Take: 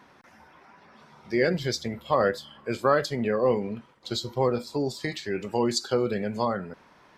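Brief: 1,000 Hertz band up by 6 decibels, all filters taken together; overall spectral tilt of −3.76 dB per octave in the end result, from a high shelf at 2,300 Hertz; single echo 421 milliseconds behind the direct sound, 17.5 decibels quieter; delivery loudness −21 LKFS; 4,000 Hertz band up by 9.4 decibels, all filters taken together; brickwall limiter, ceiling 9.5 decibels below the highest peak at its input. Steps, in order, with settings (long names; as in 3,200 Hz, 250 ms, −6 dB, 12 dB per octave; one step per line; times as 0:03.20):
parametric band 1,000 Hz +5.5 dB
high-shelf EQ 2,300 Hz +8 dB
parametric band 4,000 Hz +3.5 dB
brickwall limiter −13 dBFS
single-tap delay 421 ms −17.5 dB
level +5 dB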